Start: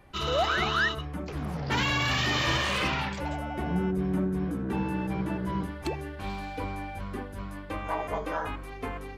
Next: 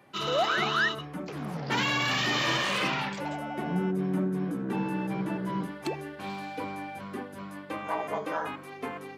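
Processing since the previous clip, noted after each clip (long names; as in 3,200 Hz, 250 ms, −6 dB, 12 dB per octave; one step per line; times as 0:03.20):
high-pass filter 140 Hz 24 dB per octave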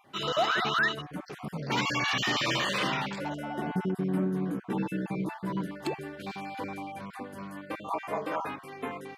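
time-frequency cells dropped at random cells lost 24%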